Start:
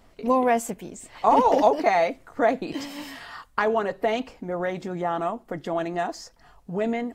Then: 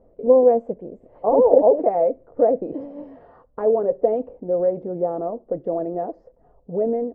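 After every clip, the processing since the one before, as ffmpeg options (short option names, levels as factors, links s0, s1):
-af "lowpass=f=520:t=q:w=4.5,volume=0.794"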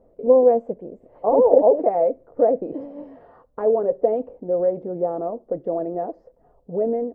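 -af "lowshelf=f=140:g=-4"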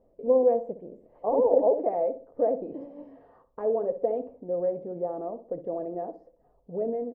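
-filter_complex "[0:a]bandreject=f=1400:w=11,asplit=2[s0][s1];[s1]adelay=62,lowpass=f=1100:p=1,volume=0.282,asplit=2[s2][s3];[s3]adelay=62,lowpass=f=1100:p=1,volume=0.4,asplit=2[s4][s5];[s5]adelay=62,lowpass=f=1100:p=1,volume=0.4,asplit=2[s6][s7];[s7]adelay=62,lowpass=f=1100:p=1,volume=0.4[s8];[s2][s4][s6][s8]amix=inputs=4:normalize=0[s9];[s0][s9]amix=inputs=2:normalize=0,volume=0.422"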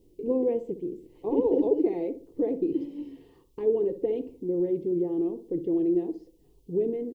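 -af "firequalizer=gain_entry='entry(160,0);entry(230,-7);entry(340,8);entry(600,-26);entry(930,-13);entry(1400,-22);entry(2000,-2);entry(2900,10)':delay=0.05:min_phase=1,volume=2.37"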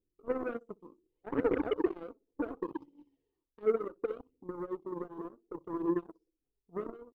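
-af "aeval=exprs='0.251*(cos(1*acos(clip(val(0)/0.251,-1,1)))-cos(1*PI/2))+0.00316*(cos(3*acos(clip(val(0)/0.251,-1,1)))-cos(3*PI/2))+0.0316*(cos(7*acos(clip(val(0)/0.251,-1,1)))-cos(7*PI/2))':c=same,aphaser=in_gain=1:out_gain=1:delay=4.9:decay=0.44:speed=0.68:type=triangular,volume=0.422"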